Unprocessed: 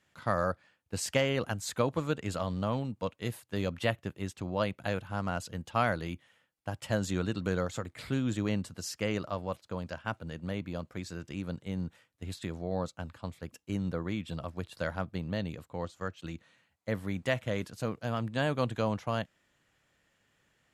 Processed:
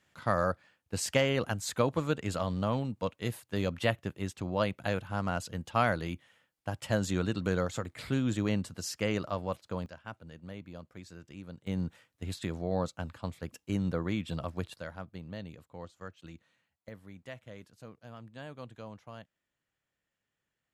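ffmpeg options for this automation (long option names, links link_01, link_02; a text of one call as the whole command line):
ffmpeg -i in.wav -af "asetnsamples=nb_out_samples=441:pad=0,asendcmd='9.86 volume volume -8.5dB;11.67 volume volume 2dB;14.74 volume volume -8dB;16.89 volume volume -15dB',volume=1dB" out.wav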